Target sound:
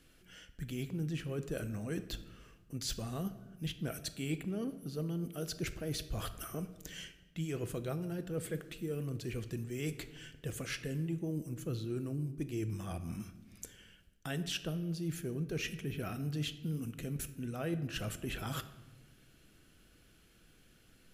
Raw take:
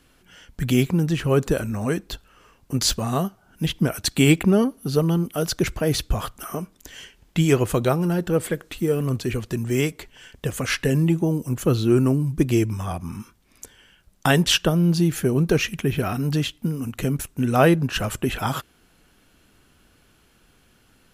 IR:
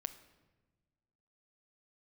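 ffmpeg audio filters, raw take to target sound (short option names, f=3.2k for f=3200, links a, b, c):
-filter_complex "[0:a]equalizer=f=940:w=2.1:g=-9.5,areverse,acompressor=threshold=-31dB:ratio=5,areverse[a];[1:a]atrim=start_sample=2205,asetrate=48510,aresample=44100[b];[a][b]afir=irnorm=-1:irlink=0,volume=-2.5dB"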